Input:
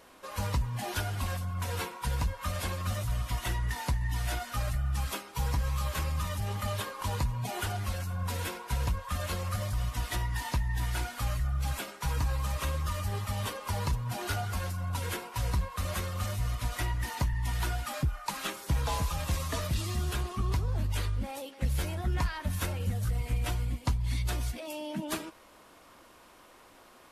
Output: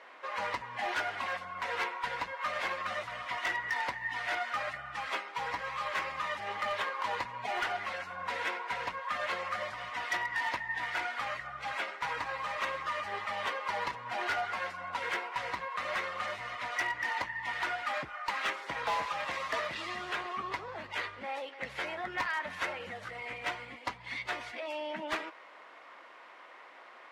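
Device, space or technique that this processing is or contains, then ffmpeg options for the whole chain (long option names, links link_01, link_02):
megaphone: -af "highpass=600,lowpass=2700,equalizer=frequency=2000:width_type=o:width=0.34:gain=7.5,asoftclip=type=hard:threshold=-31.5dB,volume=5dB"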